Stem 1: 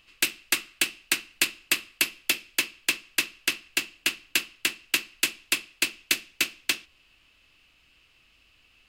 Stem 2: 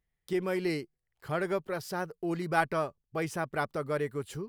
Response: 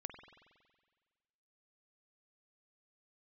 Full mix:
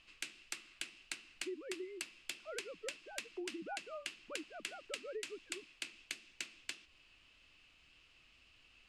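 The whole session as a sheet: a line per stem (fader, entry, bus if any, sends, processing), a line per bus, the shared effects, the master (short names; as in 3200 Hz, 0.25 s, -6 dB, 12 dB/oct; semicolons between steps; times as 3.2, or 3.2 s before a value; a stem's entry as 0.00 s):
-0.5 dB, 0.00 s, no send, LPF 9100 Hz 24 dB/oct; compressor 4:1, threshold -27 dBFS, peak gain reduction 8 dB; flange 1.6 Hz, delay 2.8 ms, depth 9.9 ms, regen -63%
-11.5 dB, 1.15 s, no send, sine-wave speech; bell 300 Hz +13 dB 0.52 oct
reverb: off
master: compressor 6:1, threshold -41 dBFS, peak gain reduction 13.5 dB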